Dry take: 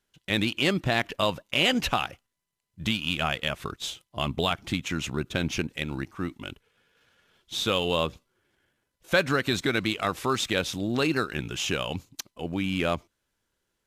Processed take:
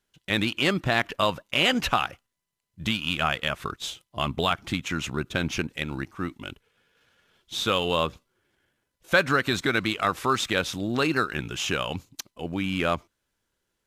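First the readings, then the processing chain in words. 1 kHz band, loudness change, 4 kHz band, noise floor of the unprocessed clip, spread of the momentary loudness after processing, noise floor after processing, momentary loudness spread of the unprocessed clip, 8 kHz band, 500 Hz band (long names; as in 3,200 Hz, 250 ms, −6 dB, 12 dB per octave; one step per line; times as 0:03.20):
+3.5 dB, +1.5 dB, +0.5 dB, −80 dBFS, 11 LU, −80 dBFS, 10 LU, 0.0 dB, +0.5 dB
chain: dynamic equaliser 1,300 Hz, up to +5 dB, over −42 dBFS, Q 1.3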